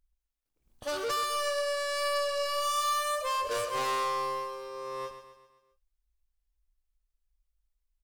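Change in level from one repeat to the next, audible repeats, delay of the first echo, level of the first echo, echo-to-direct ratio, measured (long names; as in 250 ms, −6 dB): −6.0 dB, 5, 130 ms, −10.0 dB, −9.0 dB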